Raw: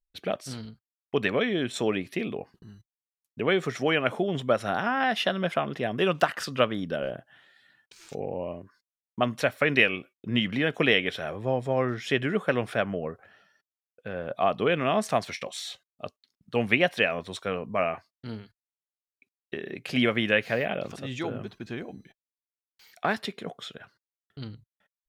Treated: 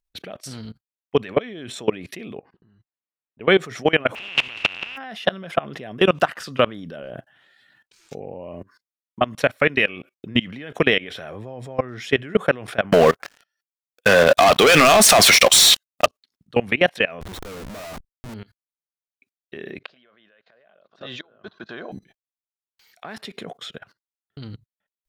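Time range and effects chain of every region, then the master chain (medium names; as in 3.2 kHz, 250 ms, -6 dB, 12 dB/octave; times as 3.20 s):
2.39–3.41 s: bass shelf 180 Hz -7.5 dB + compression 3:1, threshold -50 dBFS + Gaussian low-pass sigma 2.7 samples
4.14–4.96 s: spectral contrast reduction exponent 0.15 + compressor with a negative ratio -32 dBFS, ratio -0.5 + resonant low-pass 2.7 kHz, resonance Q 12
12.92–16.06 s: high-pass 47 Hz 24 dB/octave + tilt EQ +3.5 dB/octave + waveshaping leveller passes 5
17.21–18.34 s: de-hum 109.8 Hz, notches 3 + Schmitt trigger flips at -41 dBFS
19.79–21.92 s: inverted gate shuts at -23 dBFS, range -30 dB + cabinet simulation 240–5200 Hz, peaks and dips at 270 Hz -6 dB, 630 Hz +7 dB, 1.1 kHz +7 dB, 1.5 kHz +8 dB, 2.3 kHz -5 dB, 3.8 kHz +7 dB
whole clip: level held to a coarse grid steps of 23 dB; loudness maximiser +14.5 dB; trim -3.5 dB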